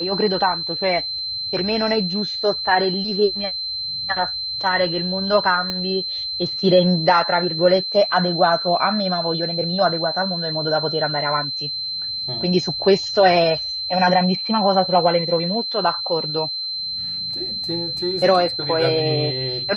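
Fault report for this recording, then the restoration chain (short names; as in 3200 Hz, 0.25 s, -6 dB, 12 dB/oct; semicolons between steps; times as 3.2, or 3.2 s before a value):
tone 4100 Hz -24 dBFS
5.7 pop -11 dBFS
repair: de-click; notch 4100 Hz, Q 30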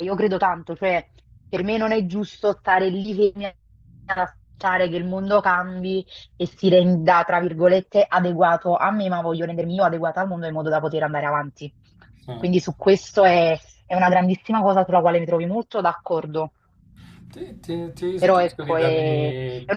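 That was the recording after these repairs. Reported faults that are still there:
5.7 pop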